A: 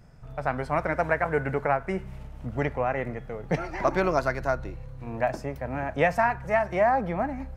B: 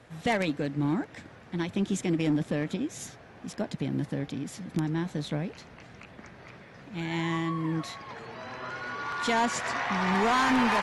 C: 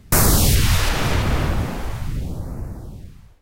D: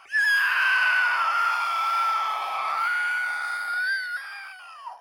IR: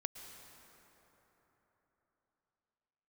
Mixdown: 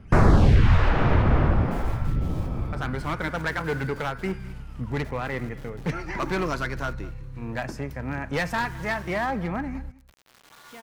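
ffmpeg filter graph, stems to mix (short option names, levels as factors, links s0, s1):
-filter_complex "[0:a]equalizer=f=660:w=1.8:g=-11.5,asoftclip=type=hard:threshold=0.0631,adelay=2350,volume=1.41,asplit=2[s0][s1];[s1]volume=0.1[s2];[1:a]highpass=99,acrossover=split=4300[s3][s4];[s4]acompressor=threshold=0.00141:ratio=4:attack=1:release=60[s5];[s3][s5]amix=inputs=2:normalize=0,acrusher=bits=4:mix=0:aa=0.000001,adelay=1450,volume=0.126,asplit=2[s6][s7];[s7]volume=0.299[s8];[2:a]lowpass=1600,volume=1.06[s9];[3:a]acompressor=threshold=0.0251:ratio=6,volume=0.188[s10];[s2][s8]amix=inputs=2:normalize=0,aecho=0:1:208:1[s11];[s0][s6][s9][s10][s11]amix=inputs=5:normalize=0"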